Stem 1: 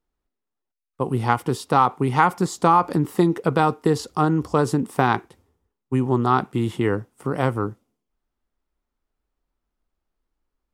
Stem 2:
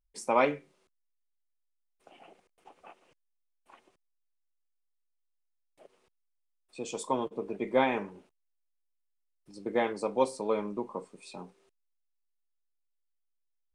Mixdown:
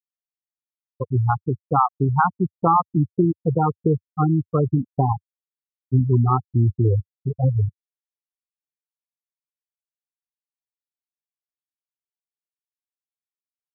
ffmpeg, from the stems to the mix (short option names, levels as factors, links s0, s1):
-filter_complex "[0:a]asubboost=boost=2.5:cutoff=130,aeval=exprs='val(0)+0.00158*(sin(2*PI*60*n/s)+sin(2*PI*2*60*n/s)/2+sin(2*PI*3*60*n/s)/3+sin(2*PI*4*60*n/s)/4+sin(2*PI*5*60*n/s)/5)':c=same,volume=1,asplit=2[s0][s1];[1:a]acrusher=bits=4:mix=0:aa=0.000001,volume=0.422[s2];[s1]apad=whole_len=606321[s3];[s2][s3]sidechaincompress=threshold=0.0141:ratio=4:attack=47:release=217[s4];[s0][s4]amix=inputs=2:normalize=0,afftfilt=real='re*gte(hypot(re,im),0.447)':imag='im*gte(hypot(re,im),0.447)':win_size=1024:overlap=0.75,equalizer=f=94:t=o:w=1.2:g=7"